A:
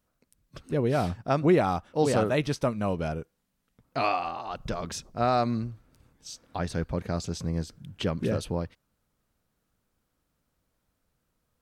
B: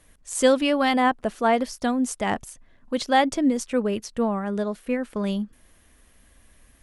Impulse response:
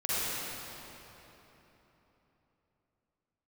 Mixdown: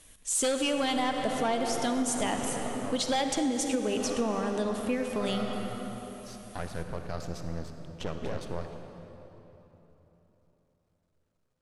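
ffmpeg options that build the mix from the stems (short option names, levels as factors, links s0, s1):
-filter_complex "[0:a]aeval=exprs='max(val(0),0)':c=same,volume=0.631,asplit=2[s0][s1];[s1]volume=0.188[s2];[1:a]bandreject=f=50:t=h:w=6,bandreject=f=100:t=h:w=6,bandreject=f=150:t=h:w=6,bandreject=f=200:t=h:w=6,aexciter=amount=1.5:drive=8.5:freq=2700,aeval=exprs='0.501*sin(PI/2*2*val(0)/0.501)':c=same,volume=0.224,asplit=3[s3][s4][s5];[s4]volume=0.211[s6];[s5]apad=whole_len=512209[s7];[s0][s7]sidechaincompress=threshold=0.00891:ratio=8:attack=16:release=767[s8];[2:a]atrim=start_sample=2205[s9];[s2][s6]amix=inputs=2:normalize=0[s10];[s10][s9]afir=irnorm=-1:irlink=0[s11];[s8][s3][s11]amix=inputs=3:normalize=0,lowpass=9100,acompressor=threshold=0.0562:ratio=6"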